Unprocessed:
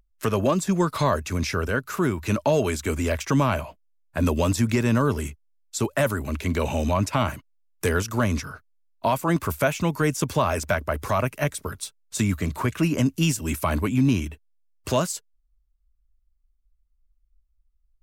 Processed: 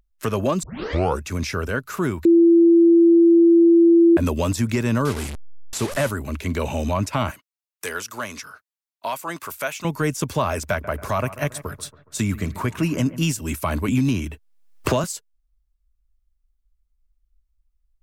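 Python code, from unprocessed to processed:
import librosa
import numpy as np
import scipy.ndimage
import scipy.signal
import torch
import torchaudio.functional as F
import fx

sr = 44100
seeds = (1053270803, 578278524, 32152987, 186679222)

y = fx.delta_mod(x, sr, bps=64000, step_db=-24.5, at=(5.05, 6.1))
y = fx.highpass(y, sr, hz=1100.0, slope=6, at=(7.31, 9.85))
y = fx.echo_bbd(y, sr, ms=139, stages=2048, feedback_pct=50, wet_db=-15.5, at=(10.56, 13.23))
y = fx.band_squash(y, sr, depth_pct=100, at=(13.88, 15.04))
y = fx.edit(y, sr, fx.tape_start(start_s=0.63, length_s=0.6),
    fx.bleep(start_s=2.25, length_s=1.92, hz=337.0, db=-9.5), tone=tone)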